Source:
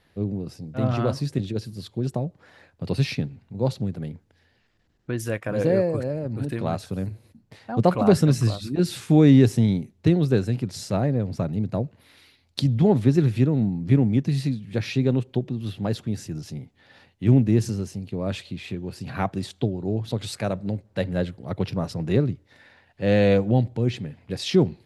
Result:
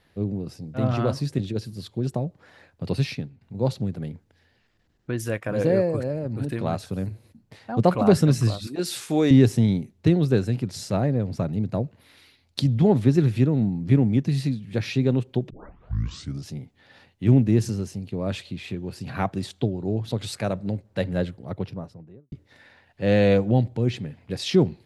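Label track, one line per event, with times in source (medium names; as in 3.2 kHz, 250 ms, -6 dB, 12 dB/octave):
2.910000	3.410000	fade out, to -11.5 dB
8.670000	9.310000	tone controls bass -15 dB, treble +5 dB
15.500000	15.500000	tape start 0.96 s
21.130000	22.320000	studio fade out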